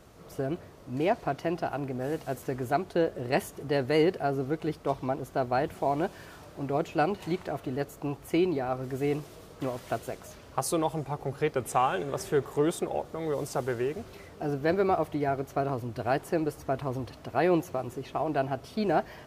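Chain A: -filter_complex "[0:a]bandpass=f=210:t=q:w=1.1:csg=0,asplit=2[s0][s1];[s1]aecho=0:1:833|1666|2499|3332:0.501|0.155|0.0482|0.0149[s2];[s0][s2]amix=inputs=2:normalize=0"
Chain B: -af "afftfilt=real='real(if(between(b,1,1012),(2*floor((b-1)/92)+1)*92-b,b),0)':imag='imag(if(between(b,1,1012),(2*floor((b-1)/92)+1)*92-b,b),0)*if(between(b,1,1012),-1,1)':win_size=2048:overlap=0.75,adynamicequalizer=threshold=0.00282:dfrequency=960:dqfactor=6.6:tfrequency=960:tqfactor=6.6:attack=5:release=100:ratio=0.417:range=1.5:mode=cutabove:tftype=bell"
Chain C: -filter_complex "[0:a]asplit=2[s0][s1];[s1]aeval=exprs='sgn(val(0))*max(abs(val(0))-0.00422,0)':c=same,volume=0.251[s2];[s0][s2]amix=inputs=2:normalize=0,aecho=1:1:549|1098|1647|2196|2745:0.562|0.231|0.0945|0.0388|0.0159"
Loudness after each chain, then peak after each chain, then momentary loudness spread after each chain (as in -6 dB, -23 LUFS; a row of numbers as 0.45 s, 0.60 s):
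-35.0 LUFS, -28.5 LUFS, -27.5 LUFS; -16.5 dBFS, -13.0 dBFS, -10.0 dBFS; 8 LU, 9 LU, 7 LU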